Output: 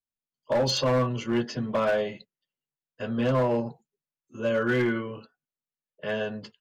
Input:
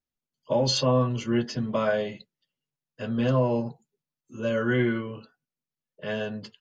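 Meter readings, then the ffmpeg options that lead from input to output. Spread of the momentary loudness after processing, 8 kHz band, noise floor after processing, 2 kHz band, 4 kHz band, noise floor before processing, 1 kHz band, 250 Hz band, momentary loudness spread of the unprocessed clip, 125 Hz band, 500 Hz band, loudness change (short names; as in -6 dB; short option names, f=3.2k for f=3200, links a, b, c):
14 LU, n/a, under -85 dBFS, +1.0 dB, -1.5 dB, under -85 dBFS, +1.0 dB, -1.5 dB, 15 LU, -3.0 dB, +0.5 dB, -0.5 dB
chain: -filter_complex "[0:a]acrossover=split=310|2900[a][b][c];[b]dynaudnorm=f=120:g=5:m=4.5dB[d];[a][d][c]amix=inputs=3:normalize=0,asoftclip=type=hard:threshold=-16.5dB,agate=range=-7dB:threshold=-44dB:ratio=16:detection=peak,volume=-2.5dB"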